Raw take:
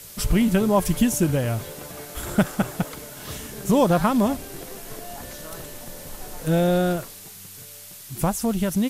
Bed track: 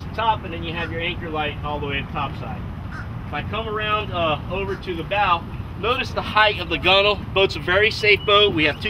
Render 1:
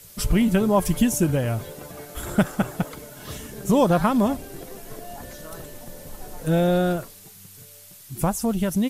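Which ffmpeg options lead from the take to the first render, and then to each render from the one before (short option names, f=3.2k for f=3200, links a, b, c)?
-af "afftdn=nr=6:nf=-42"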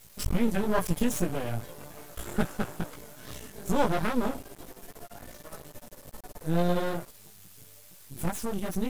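-af "flanger=delay=16.5:depth=3.7:speed=2.4,aeval=exprs='max(val(0),0)':c=same"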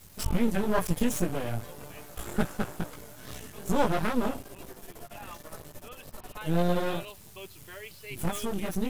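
-filter_complex "[1:a]volume=-27.5dB[a];[0:a][a]amix=inputs=2:normalize=0"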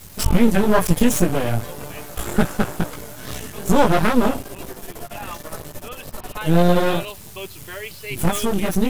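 -af "volume=11dB,alimiter=limit=-3dB:level=0:latency=1"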